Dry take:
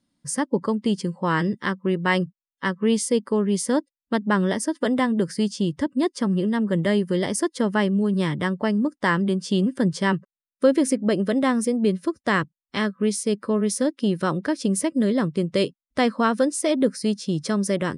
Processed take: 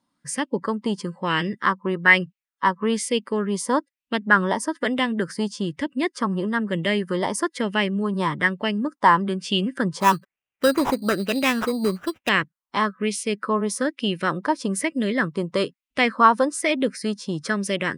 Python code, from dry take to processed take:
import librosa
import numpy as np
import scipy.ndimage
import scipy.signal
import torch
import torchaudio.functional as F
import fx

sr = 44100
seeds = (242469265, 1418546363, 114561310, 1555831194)

y = fx.low_shelf(x, sr, hz=87.0, db=-10.0)
y = fx.sample_hold(y, sr, seeds[0], rate_hz=4400.0, jitter_pct=0, at=(10.0, 12.29))
y = fx.bell_lfo(y, sr, hz=1.1, low_hz=920.0, high_hz=2800.0, db=15)
y = y * 10.0 ** (-2.0 / 20.0)